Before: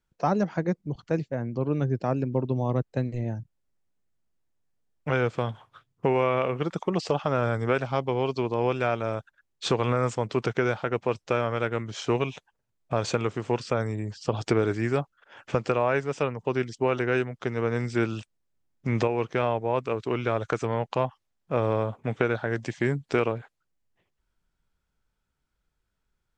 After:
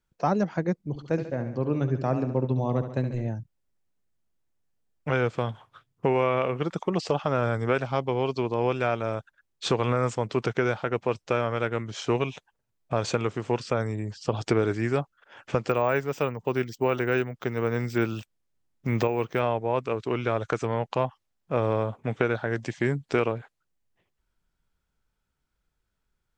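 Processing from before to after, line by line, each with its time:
0:00.85–0:03.29: repeating echo 70 ms, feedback 57%, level −10 dB
0:15.69–0:19.40: bad sample-rate conversion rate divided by 2×, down none, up hold

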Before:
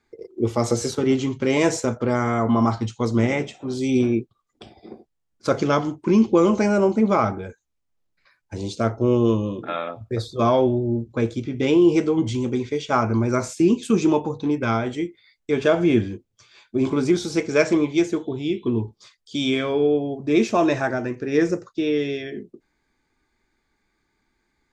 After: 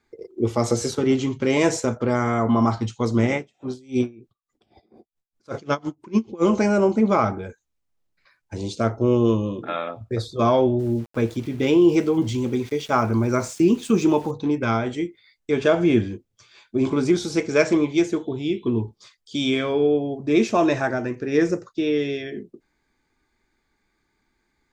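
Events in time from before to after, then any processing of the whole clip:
0:03.36–0:06.42: tremolo with a sine in dB 2.7 Hz → 7.9 Hz, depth 27 dB
0:10.79–0:14.31: centre clipping without the shift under −41.5 dBFS

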